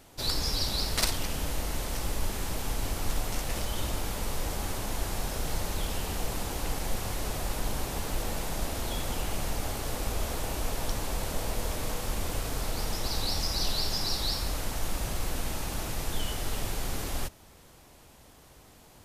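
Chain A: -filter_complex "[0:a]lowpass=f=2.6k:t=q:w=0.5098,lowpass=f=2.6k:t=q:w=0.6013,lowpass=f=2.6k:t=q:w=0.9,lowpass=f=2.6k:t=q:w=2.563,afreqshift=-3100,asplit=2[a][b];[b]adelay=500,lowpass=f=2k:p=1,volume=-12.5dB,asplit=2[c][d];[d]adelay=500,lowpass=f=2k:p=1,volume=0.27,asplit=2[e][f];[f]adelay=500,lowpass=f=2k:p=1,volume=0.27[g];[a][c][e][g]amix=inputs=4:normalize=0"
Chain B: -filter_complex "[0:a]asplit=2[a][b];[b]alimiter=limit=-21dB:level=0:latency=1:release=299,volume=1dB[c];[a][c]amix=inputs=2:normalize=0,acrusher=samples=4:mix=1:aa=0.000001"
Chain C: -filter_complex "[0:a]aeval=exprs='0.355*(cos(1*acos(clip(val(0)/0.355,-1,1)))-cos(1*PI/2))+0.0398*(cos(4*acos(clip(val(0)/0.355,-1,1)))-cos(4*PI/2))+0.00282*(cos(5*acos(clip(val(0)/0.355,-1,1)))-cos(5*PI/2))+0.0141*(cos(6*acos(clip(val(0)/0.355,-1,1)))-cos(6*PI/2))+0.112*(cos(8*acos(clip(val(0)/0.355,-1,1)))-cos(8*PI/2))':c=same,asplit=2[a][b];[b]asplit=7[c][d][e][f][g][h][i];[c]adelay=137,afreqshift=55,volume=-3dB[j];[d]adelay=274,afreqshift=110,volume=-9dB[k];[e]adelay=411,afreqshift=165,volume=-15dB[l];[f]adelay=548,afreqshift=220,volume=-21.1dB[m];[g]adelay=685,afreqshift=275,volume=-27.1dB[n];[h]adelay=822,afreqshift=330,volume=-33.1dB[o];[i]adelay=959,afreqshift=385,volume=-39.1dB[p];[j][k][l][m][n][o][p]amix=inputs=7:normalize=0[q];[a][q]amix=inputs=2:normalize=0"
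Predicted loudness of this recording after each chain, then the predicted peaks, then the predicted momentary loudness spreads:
-27.0, -27.5, -25.0 LUFS; -16.5, -7.0, -6.0 dBFS; 3, 5, 6 LU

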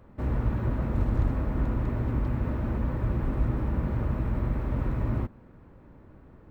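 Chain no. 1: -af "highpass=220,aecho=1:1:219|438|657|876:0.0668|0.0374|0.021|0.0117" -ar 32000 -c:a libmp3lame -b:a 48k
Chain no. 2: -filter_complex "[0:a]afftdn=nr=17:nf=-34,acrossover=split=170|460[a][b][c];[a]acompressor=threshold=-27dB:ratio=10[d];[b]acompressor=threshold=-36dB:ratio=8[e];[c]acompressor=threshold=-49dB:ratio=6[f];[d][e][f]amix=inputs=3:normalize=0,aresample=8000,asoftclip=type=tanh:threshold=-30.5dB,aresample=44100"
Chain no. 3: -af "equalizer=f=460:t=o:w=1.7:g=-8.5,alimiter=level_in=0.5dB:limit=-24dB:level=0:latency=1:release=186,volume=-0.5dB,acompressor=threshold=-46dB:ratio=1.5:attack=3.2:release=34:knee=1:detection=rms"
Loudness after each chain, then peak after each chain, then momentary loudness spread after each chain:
-37.0, -37.0, -41.0 LUFS; -22.5, -30.5, -30.5 dBFS; 2, 1, 15 LU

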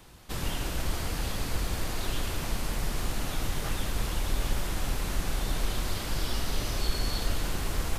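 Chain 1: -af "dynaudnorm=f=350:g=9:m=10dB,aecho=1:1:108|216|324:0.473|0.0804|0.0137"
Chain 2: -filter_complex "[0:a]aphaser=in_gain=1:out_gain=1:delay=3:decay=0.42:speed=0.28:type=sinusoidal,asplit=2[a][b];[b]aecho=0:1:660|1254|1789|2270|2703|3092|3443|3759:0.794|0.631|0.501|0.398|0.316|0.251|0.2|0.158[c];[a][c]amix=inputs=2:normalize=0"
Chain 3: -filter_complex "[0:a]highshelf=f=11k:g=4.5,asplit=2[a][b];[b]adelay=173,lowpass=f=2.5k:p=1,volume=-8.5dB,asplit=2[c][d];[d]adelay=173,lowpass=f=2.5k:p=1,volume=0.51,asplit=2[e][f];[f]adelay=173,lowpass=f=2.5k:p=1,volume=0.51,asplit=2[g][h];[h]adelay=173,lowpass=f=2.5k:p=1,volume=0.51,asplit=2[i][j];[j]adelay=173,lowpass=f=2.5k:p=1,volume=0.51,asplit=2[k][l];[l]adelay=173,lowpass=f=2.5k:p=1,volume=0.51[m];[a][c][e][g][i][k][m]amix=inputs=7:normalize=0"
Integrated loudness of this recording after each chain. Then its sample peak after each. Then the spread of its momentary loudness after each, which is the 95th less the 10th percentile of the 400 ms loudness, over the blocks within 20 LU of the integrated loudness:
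-23.5, -27.0, -32.5 LUFS; -4.0, -5.0, -12.0 dBFS; 10, 5, 2 LU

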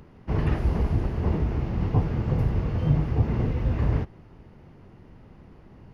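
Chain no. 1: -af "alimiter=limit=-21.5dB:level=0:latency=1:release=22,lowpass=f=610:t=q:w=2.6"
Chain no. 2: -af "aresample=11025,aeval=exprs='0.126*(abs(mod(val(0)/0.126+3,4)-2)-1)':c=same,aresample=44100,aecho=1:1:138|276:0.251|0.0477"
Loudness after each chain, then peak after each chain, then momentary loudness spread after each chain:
-29.5, -27.0 LUFS; -18.0, -16.0 dBFS; 8, 3 LU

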